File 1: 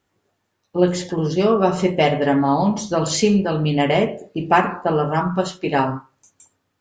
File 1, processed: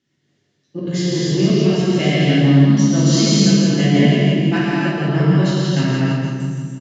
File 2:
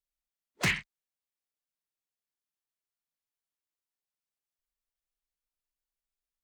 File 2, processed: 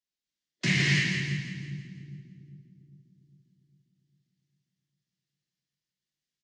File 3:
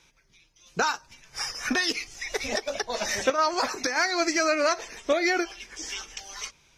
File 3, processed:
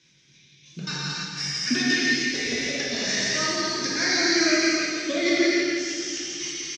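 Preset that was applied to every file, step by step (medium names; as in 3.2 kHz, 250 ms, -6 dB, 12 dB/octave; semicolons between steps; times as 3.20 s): high-order bell 740 Hz -10 dB; trance gate "xx.xxx..xx.xx" 190 bpm -24 dB; in parallel at -3 dB: saturation -23 dBFS; on the sum: cabinet simulation 130–6400 Hz, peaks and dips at 140 Hz +9 dB, 880 Hz -9 dB, 1.4 kHz -8 dB, 2.4 kHz -5 dB; doubling 21 ms -11.5 dB; on a send: two-band feedback delay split 310 Hz, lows 402 ms, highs 167 ms, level -5 dB; on the sum: gated-style reverb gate 360 ms flat, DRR -7.5 dB; trim -4.5 dB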